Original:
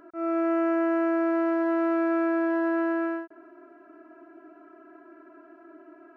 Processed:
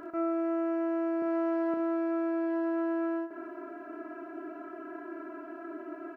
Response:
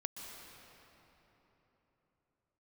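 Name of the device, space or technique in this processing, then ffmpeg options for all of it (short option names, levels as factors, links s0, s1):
serial compression, leveller first: -filter_complex "[0:a]asettb=1/sr,asplit=3[s0][s1][s2];[s0]atrim=end=1.224[s3];[s1]atrim=start=1.22:end=1.74,asetpts=PTS-STARTPTS,afade=t=in:d=0.004:c=qsin,afade=t=out:st=0.516:d=0.004:c=qsin,highpass=300[s4];[s2]atrim=start=1.736[s5];[s3][s4]acrossfade=d=0.004:c1=hsin:c2=qsin[s6];[s6][s5]acrossfade=d=0.004:c1=qsin:c2=hsin,acompressor=threshold=0.0158:ratio=1.5,acompressor=threshold=0.0112:ratio=5,aecho=1:1:33|57:0.299|0.237,volume=2.37"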